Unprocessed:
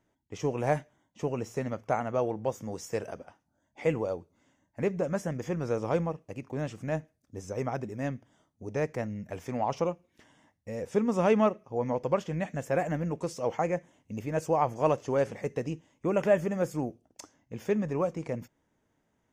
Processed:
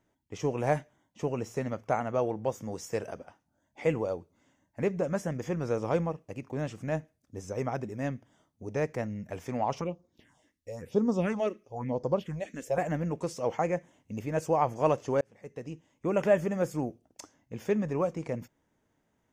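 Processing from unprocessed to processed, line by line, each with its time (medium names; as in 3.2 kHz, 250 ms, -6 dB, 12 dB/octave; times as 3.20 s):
9.81–12.78 s: phase shifter stages 4, 1 Hz, lowest notch 120–2600 Hz
15.21–16.20 s: fade in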